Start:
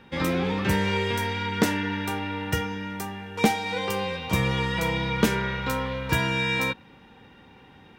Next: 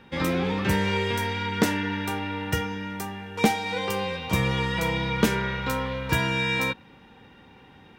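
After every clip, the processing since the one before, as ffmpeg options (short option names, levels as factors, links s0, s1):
-af anull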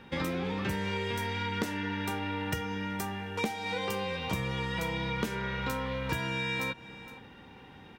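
-af "aecho=1:1:465:0.0668,acompressor=threshold=0.0316:ratio=5"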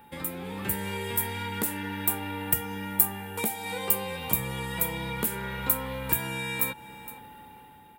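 -af "aeval=exprs='val(0)+0.00501*sin(2*PI*860*n/s)':c=same,dynaudnorm=f=120:g=9:m=2,aexciter=amount=14.5:drive=4.5:freq=8400,volume=0.473"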